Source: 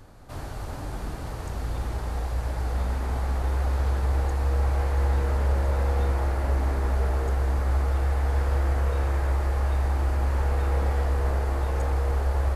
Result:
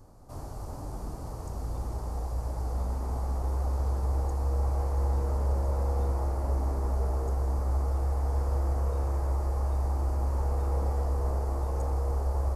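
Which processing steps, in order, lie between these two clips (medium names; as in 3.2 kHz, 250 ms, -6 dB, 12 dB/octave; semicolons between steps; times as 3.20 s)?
high-order bell 2.4 kHz -12.5 dB; trim -4 dB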